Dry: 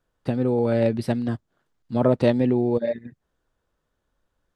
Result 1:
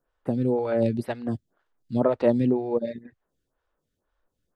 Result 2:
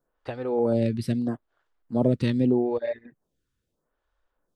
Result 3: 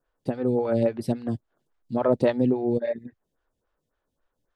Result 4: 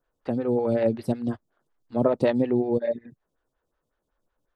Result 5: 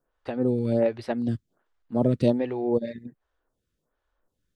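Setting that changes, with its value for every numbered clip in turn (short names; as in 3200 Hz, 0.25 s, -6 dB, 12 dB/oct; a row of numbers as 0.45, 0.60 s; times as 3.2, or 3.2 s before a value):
photocell phaser, rate: 2, 0.79, 3.6, 5.4, 1.3 Hz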